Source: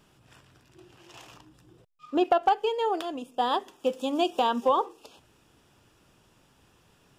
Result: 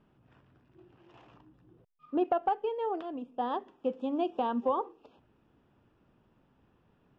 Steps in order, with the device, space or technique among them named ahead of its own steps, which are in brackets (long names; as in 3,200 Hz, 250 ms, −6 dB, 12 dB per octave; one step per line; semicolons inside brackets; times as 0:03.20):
phone in a pocket (low-pass filter 3,100 Hz 12 dB per octave; parametric band 230 Hz +4.5 dB 0.73 octaves; high-shelf EQ 2,000 Hz −11 dB)
level −5 dB